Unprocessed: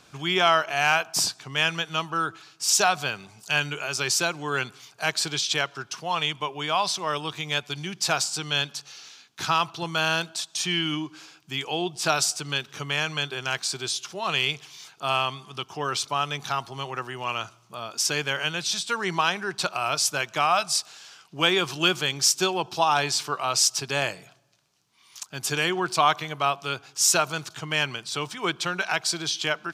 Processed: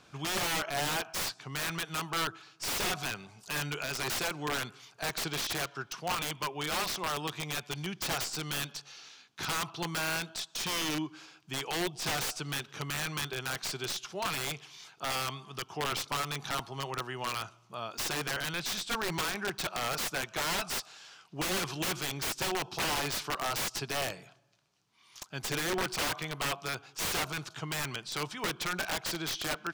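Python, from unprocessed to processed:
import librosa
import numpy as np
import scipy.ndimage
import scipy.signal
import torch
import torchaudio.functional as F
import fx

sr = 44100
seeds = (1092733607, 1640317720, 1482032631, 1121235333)

y = fx.tracing_dist(x, sr, depth_ms=0.045)
y = (np.mod(10.0 ** (20.5 / 20.0) * y + 1.0, 2.0) - 1.0) / 10.0 ** (20.5 / 20.0)
y = fx.high_shelf(y, sr, hz=5400.0, db=-7.5)
y = y * 10.0 ** (-3.0 / 20.0)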